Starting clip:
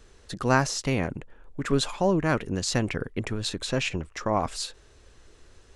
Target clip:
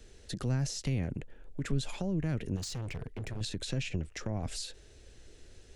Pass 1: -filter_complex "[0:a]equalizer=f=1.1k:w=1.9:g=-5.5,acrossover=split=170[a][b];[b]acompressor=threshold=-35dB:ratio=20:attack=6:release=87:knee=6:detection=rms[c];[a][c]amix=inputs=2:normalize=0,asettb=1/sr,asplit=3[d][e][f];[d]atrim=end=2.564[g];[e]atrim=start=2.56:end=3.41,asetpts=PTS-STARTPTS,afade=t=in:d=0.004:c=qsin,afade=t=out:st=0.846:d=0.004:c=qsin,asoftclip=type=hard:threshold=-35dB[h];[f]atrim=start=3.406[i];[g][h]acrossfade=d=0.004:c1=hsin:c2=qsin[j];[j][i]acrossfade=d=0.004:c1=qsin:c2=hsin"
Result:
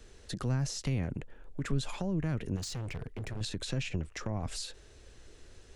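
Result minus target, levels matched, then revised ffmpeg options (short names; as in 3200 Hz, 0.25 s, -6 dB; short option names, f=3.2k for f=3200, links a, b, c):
1000 Hz band +2.5 dB
-filter_complex "[0:a]equalizer=f=1.1k:w=1.9:g=-13,acrossover=split=170[a][b];[b]acompressor=threshold=-35dB:ratio=20:attack=6:release=87:knee=6:detection=rms[c];[a][c]amix=inputs=2:normalize=0,asettb=1/sr,asplit=3[d][e][f];[d]atrim=end=2.564[g];[e]atrim=start=2.56:end=3.41,asetpts=PTS-STARTPTS,afade=t=in:d=0.004:c=qsin,afade=t=out:st=0.846:d=0.004:c=qsin,asoftclip=type=hard:threshold=-35dB[h];[f]atrim=start=3.406[i];[g][h]acrossfade=d=0.004:c1=hsin:c2=qsin[j];[j][i]acrossfade=d=0.004:c1=qsin:c2=hsin"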